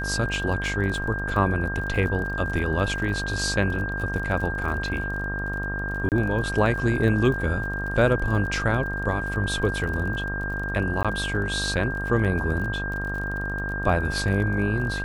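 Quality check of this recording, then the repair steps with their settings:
buzz 50 Hz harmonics 27 -31 dBFS
crackle 35/s -32 dBFS
tone 1600 Hz -29 dBFS
6.09–6.12 gap 28 ms
11.03–11.05 gap 16 ms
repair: de-click; de-hum 50 Hz, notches 27; notch 1600 Hz, Q 30; interpolate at 6.09, 28 ms; interpolate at 11.03, 16 ms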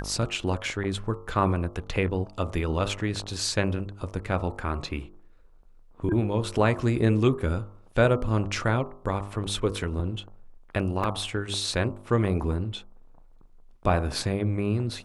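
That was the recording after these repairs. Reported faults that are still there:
none

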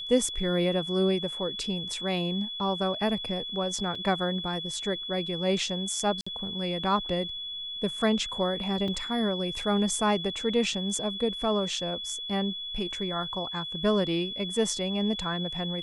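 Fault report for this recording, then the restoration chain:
tone 3400 Hz -34 dBFS
3.95 gap 4.1 ms
6.21–6.26 gap 55 ms
8.88 gap 3.9 ms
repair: notch 3400 Hz, Q 30; interpolate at 3.95, 4.1 ms; interpolate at 6.21, 55 ms; interpolate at 8.88, 3.9 ms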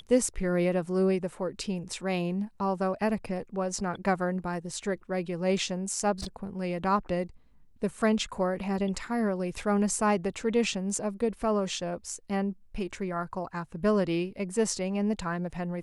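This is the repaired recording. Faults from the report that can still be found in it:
none

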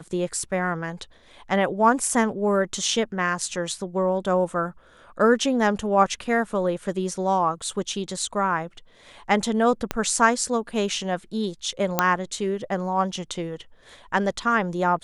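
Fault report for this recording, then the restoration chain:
9.91 pop -9 dBFS
11.99 pop -3 dBFS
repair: de-click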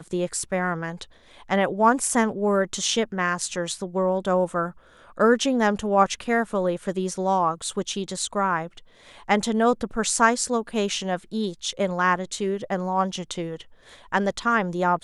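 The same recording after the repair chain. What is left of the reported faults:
9.91 pop

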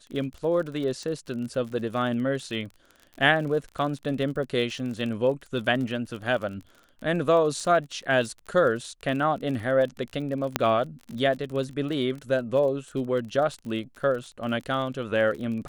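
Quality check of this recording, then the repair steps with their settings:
crackle 39/s -34 dBFS
10.56 pop -6 dBFS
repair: de-click

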